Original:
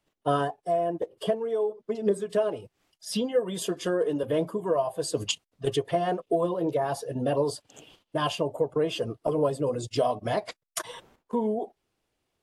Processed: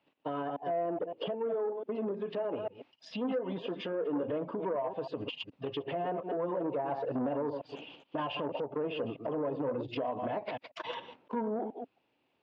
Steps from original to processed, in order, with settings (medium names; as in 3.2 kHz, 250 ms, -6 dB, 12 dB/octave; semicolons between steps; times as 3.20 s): chunks repeated in reverse 141 ms, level -12.5 dB; compression, threshold -28 dBFS, peak gain reduction 9.5 dB; peak limiter -28 dBFS, peak gain reduction 11 dB; low-pass that closes with the level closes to 1.5 kHz, closed at -31.5 dBFS; cabinet simulation 130–4100 Hz, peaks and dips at 270 Hz +8 dB, 540 Hz +4 dB, 890 Hz +7 dB, 2.6 kHz +8 dB; transformer saturation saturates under 440 Hz